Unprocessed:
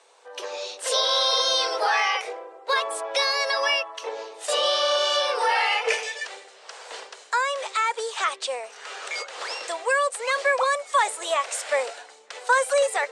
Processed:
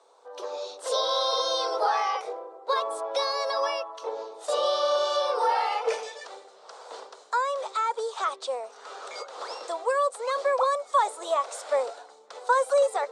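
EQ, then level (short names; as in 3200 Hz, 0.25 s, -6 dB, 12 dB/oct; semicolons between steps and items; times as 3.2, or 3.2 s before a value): band shelf 2200 Hz -10.5 dB 1.1 oct; high shelf 3400 Hz -11 dB; 0.0 dB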